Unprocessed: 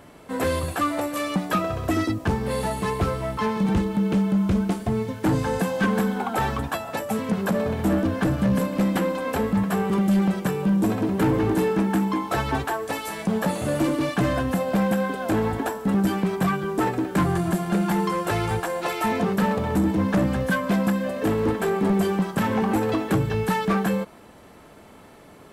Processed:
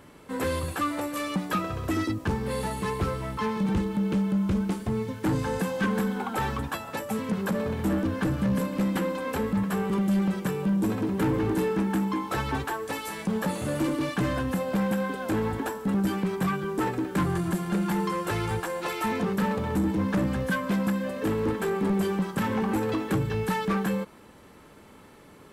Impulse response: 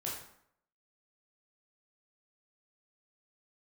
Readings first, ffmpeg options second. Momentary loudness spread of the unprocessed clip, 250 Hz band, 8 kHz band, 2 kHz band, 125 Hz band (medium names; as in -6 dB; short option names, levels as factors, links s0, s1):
5 LU, -4.0 dB, -3.5 dB, -3.5 dB, -4.0 dB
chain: -filter_complex "[0:a]equalizer=f=680:w=5.5:g=-9,asplit=2[s0][s1];[s1]asoftclip=type=tanh:threshold=0.0794,volume=0.562[s2];[s0][s2]amix=inputs=2:normalize=0,volume=0.473"